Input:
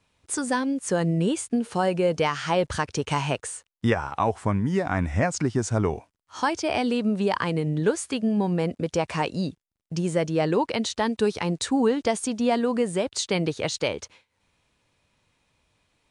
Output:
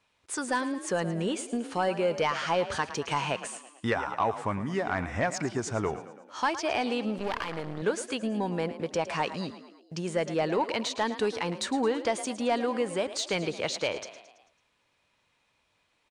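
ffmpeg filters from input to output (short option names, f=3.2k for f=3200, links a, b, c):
-filter_complex "[0:a]asplit=6[a][b][c][d][e][f];[b]adelay=110,afreqshift=35,volume=-14.5dB[g];[c]adelay=220,afreqshift=70,volume=-20dB[h];[d]adelay=330,afreqshift=105,volume=-25.5dB[i];[e]adelay=440,afreqshift=140,volume=-31dB[j];[f]adelay=550,afreqshift=175,volume=-36.6dB[k];[a][g][h][i][j][k]amix=inputs=6:normalize=0,asettb=1/sr,asplit=3[l][m][n];[l]atrim=end=7.184[o];[m]atrim=start=7.18:end=7.82,asetpts=PTS-STARTPTS,afade=t=in:d=0.004:c=qsin,afade=t=out:st=0.636:d=0.004:c=qsin,aeval=exprs='max(val(0),0)':c=same[p];[n]atrim=start=7.816[q];[o][p]acrossfade=d=0.004:c1=hsin:c2=qsin[r];[r][q]acrossfade=d=0.004:c1=qsin:c2=hsin,asplit=2[s][t];[t]highpass=f=720:p=1,volume=11dB,asoftclip=type=tanh:threshold=-8.5dB[u];[s][u]amix=inputs=2:normalize=0,lowpass=f=4.1k:p=1,volume=-6dB,volume=-6dB"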